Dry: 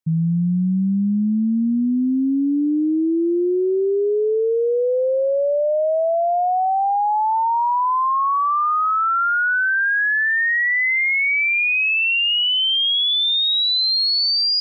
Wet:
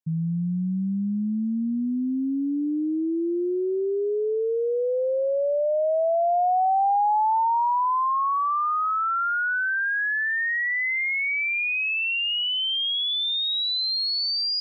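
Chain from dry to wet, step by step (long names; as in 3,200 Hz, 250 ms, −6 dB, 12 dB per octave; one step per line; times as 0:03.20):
dynamic equaliser 790 Hz, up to +5 dB, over −34 dBFS, Q 1.6
level −7 dB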